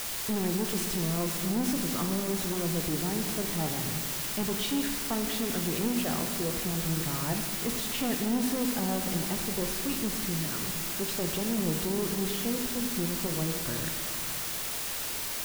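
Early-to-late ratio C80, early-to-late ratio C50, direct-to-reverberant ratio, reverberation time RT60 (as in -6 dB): 7.0 dB, 6.0 dB, 4.5 dB, 2.2 s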